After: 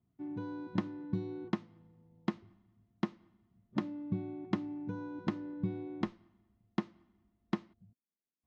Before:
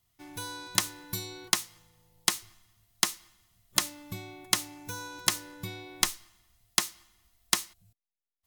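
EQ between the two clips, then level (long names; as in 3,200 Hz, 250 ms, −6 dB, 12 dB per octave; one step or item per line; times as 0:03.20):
resonant band-pass 230 Hz, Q 2.2
high-frequency loss of the air 210 metres
+12.0 dB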